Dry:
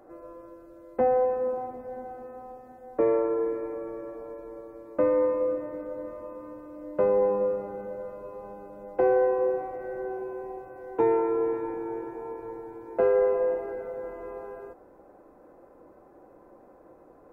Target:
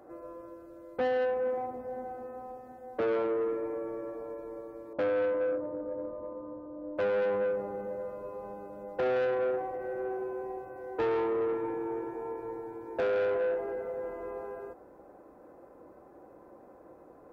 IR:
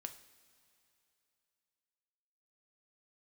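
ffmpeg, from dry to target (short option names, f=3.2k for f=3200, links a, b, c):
-filter_complex "[0:a]asettb=1/sr,asplit=3[a][b][c];[a]atrim=end=4.934[d];[b]atrim=start=4.93:end=6.98,asetpts=PTS-STARTPTS,afade=t=in:d=0.004:c=qsin,afade=t=out:st=2.046:d=0.004:c=qsin,lowpass=f=1.1k:w=0.5412,lowpass=f=1.1k:w=1.3066[e];[c]atrim=start=6.976[f];[d][e]acrossfade=d=0.004:c1=hsin:c2=qsin[g];[g][f]acrossfade=d=0.004:c1=qsin:c2=hsin,asoftclip=type=tanh:threshold=-25.5dB,highpass=42"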